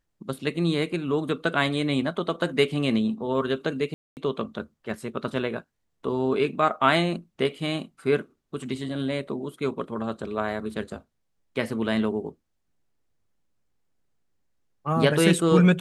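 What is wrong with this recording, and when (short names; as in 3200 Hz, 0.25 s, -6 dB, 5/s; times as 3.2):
3.94–4.17 gap 0.229 s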